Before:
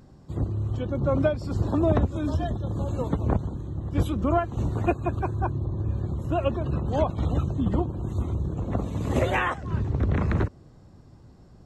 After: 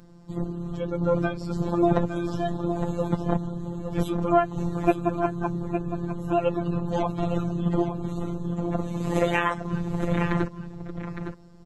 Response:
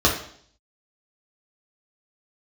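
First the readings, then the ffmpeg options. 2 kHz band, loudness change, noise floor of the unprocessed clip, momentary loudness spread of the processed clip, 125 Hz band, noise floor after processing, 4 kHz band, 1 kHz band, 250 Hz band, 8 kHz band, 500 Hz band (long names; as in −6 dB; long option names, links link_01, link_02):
+1.0 dB, 0.0 dB, −51 dBFS, 10 LU, −3.5 dB, −47 dBFS, +1.5 dB, +2.5 dB, +2.5 dB, can't be measured, +2.0 dB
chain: -af "aecho=1:1:861:0.355,afftfilt=real='hypot(re,im)*cos(PI*b)':imag='0':win_size=1024:overlap=0.75,volume=4.5dB"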